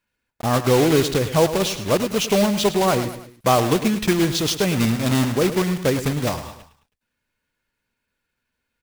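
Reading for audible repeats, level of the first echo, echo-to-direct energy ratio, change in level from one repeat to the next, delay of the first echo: 3, −12.0 dB, −11.0 dB, −6.5 dB, 106 ms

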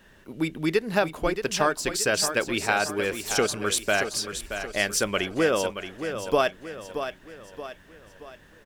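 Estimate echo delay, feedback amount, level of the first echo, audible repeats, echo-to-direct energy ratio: 626 ms, 45%, −9.0 dB, 4, −8.0 dB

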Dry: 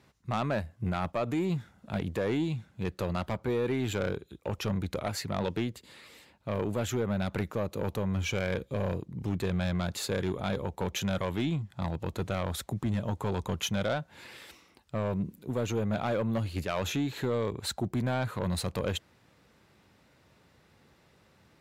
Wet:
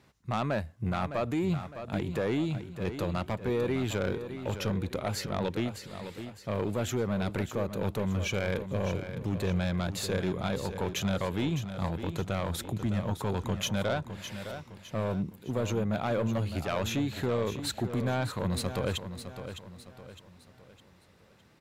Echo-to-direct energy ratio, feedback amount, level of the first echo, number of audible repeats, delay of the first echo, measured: −9.0 dB, 41%, −10.0 dB, 4, 609 ms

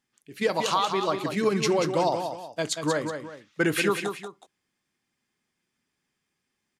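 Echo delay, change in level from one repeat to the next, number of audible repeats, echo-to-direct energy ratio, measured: 185 ms, −8.5 dB, 2, −6.5 dB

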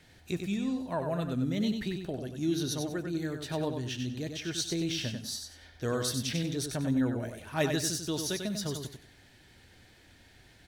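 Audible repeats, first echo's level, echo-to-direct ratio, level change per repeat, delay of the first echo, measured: 3, −6.0 dB, −5.5 dB, −11.5 dB, 95 ms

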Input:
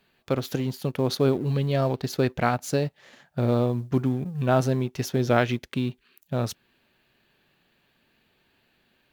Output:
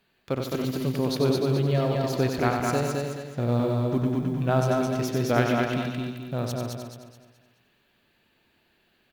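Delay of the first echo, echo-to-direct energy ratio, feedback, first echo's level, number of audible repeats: 93 ms, 0.5 dB, repeats not evenly spaced, −6.0 dB, 11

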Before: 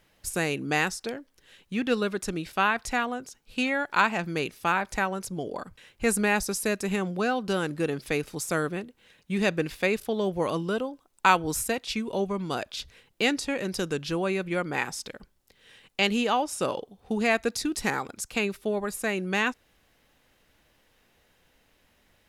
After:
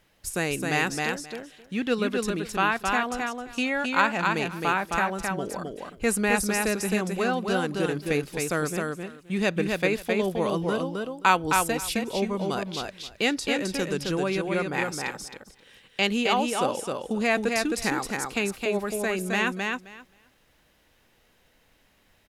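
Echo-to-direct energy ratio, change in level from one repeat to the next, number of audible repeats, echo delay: −3.5 dB, −16.5 dB, 2, 264 ms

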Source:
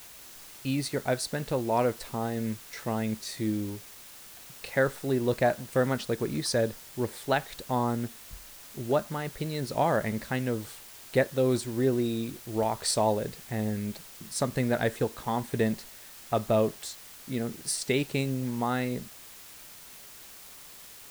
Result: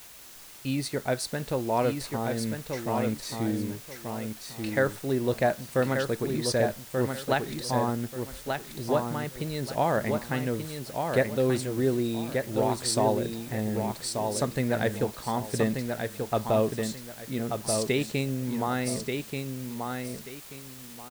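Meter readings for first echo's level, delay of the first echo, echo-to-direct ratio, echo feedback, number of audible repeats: −5.0 dB, 1,184 ms, −4.5 dB, 25%, 3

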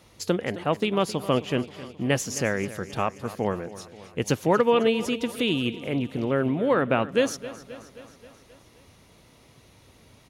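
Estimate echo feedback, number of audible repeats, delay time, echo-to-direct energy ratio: 60%, 5, 265 ms, −14.0 dB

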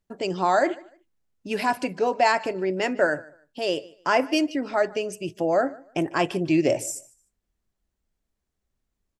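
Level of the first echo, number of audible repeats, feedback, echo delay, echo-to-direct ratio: −22.0 dB, 2, 23%, 150 ms, −22.0 dB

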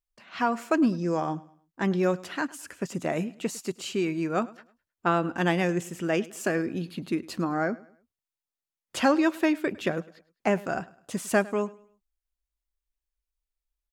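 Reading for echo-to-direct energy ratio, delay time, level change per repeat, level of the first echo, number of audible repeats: −20.5 dB, 104 ms, −9.0 dB, −21.0 dB, 2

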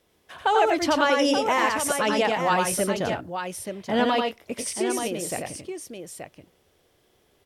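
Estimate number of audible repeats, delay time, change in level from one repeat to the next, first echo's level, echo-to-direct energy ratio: 2, 89 ms, repeats not evenly spaced, −3.5 dB, −1.5 dB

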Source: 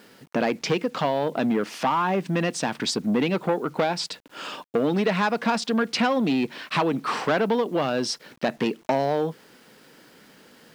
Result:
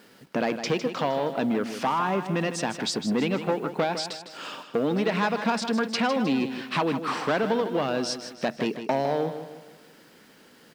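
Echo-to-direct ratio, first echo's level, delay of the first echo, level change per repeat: −9.0 dB, −10.0 dB, 156 ms, −7.5 dB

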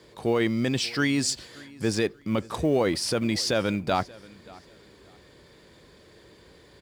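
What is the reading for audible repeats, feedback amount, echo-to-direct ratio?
2, 27%, −22.0 dB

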